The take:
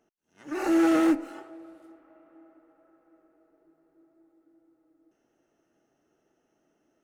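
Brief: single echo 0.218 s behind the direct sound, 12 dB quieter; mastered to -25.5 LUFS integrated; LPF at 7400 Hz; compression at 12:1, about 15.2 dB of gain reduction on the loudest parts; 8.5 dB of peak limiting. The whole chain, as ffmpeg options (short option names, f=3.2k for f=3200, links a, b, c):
-af "lowpass=7.4k,acompressor=threshold=-34dB:ratio=12,alimiter=level_in=9.5dB:limit=-24dB:level=0:latency=1,volume=-9.5dB,aecho=1:1:218:0.251,volume=18.5dB"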